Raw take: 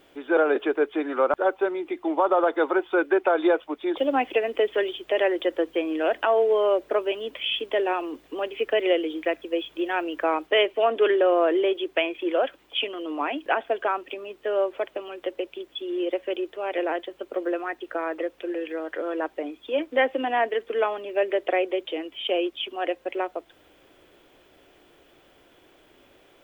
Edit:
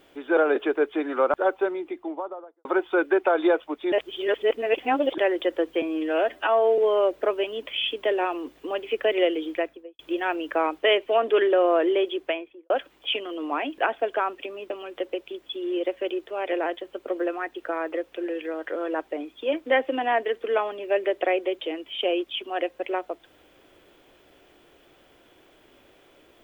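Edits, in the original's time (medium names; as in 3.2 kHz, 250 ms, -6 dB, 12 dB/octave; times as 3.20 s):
1.52–2.65 s: studio fade out
3.92–5.18 s: reverse
5.82–6.46 s: stretch 1.5×
9.19–9.67 s: studio fade out
11.80–12.38 s: studio fade out
14.38–14.96 s: delete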